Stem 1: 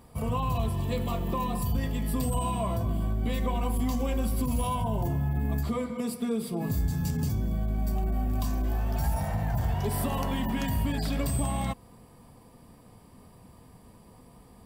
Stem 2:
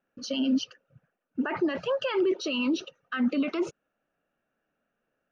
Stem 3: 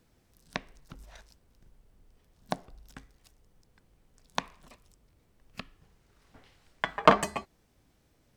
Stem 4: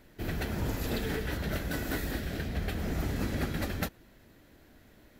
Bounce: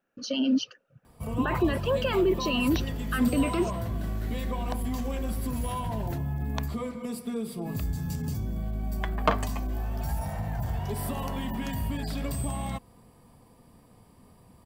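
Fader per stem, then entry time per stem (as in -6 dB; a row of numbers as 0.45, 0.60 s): -3.0, +1.0, -5.5, -12.0 dB; 1.05, 0.00, 2.20, 2.30 s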